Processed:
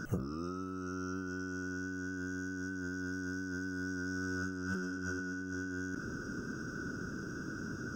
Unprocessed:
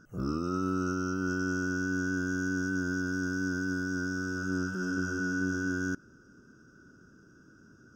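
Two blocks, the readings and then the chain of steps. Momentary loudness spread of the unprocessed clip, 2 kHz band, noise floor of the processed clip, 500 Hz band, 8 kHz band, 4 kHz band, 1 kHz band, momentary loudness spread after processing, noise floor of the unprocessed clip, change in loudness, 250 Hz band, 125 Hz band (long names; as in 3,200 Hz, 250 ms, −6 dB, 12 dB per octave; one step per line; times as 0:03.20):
2 LU, −6.0 dB, −42 dBFS, −6.5 dB, −6.0 dB, −5.5 dB, −6.5 dB, 4 LU, −58 dBFS, −7.5 dB, −7.0 dB, −5.5 dB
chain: compressor whose output falls as the input rises −43 dBFS, ratio −1
level +4.5 dB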